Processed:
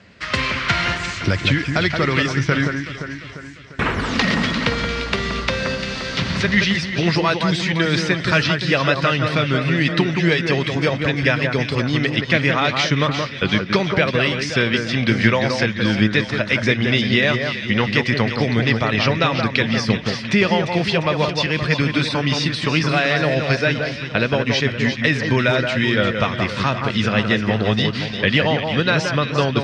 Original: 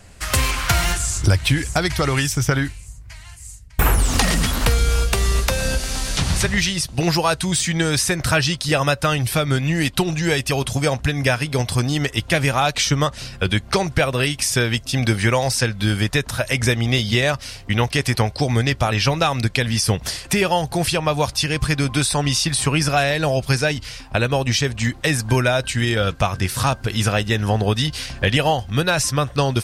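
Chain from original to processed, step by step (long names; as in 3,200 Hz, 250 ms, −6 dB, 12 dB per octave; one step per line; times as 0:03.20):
loudspeaker in its box 140–4,600 Hz, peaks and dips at 210 Hz +5 dB, 780 Hz −8 dB, 2,000 Hz +4 dB
delay that swaps between a low-pass and a high-pass 174 ms, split 2,000 Hz, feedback 71%, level −5 dB
level +1 dB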